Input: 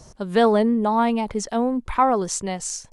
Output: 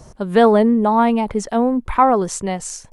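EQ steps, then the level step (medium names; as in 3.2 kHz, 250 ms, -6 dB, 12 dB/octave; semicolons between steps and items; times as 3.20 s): peaking EQ 5.4 kHz -7 dB 1.6 oct; +5.0 dB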